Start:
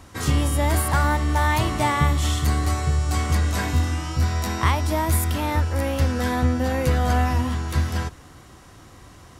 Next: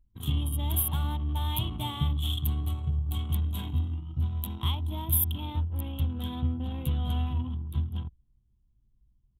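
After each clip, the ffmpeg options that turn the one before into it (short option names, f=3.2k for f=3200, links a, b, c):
-af "anlmdn=251,firequalizer=gain_entry='entry(170,0);entry(540,-16);entry(910,-7);entry(1800,-22);entry(3300,11);entry(4800,-25);entry(12000,14)':delay=0.05:min_phase=1,volume=-7dB"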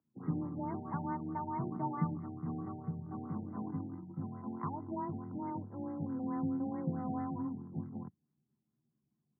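-af "highpass=f=150:w=0.5412,highpass=f=150:w=1.3066,afreqshift=18,afftfilt=real='re*lt(b*sr/1024,850*pow(2200/850,0.5+0.5*sin(2*PI*4.6*pts/sr)))':imag='im*lt(b*sr/1024,850*pow(2200/850,0.5+0.5*sin(2*PI*4.6*pts/sr)))':win_size=1024:overlap=0.75,volume=1dB"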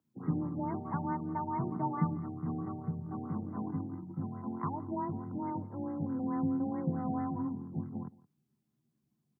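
-filter_complex "[0:a]asplit=2[a][b];[b]adelay=169.1,volume=-21dB,highshelf=f=4k:g=-3.8[c];[a][c]amix=inputs=2:normalize=0,volume=3dB"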